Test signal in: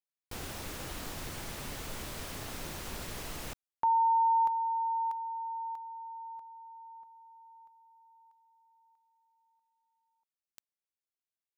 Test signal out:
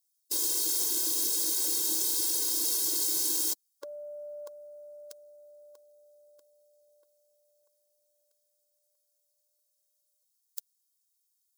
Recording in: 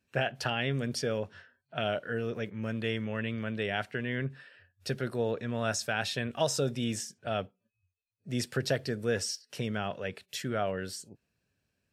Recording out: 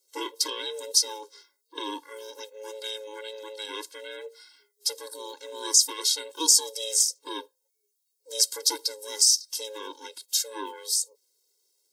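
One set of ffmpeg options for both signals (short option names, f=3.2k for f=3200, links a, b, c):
-filter_complex "[0:a]aeval=exprs='val(0)*sin(2*PI*320*n/s)':c=same,asubboost=boost=3:cutoff=160,acrossover=split=280|1300[a][b][c];[c]aexciter=amount=13.5:drive=5.4:freq=3.7k[d];[a][b][d]amix=inputs=3:normalize=0,lowshelf=f=500:g=5.5,afftfilt=real='re*eq(mod(floor(b*sr/1024/280),2),1)':imag='im*eq(mod(floor(b*sr/1024/280),2),1)':win_size=1024:overlap=0.75,volume=-1dB"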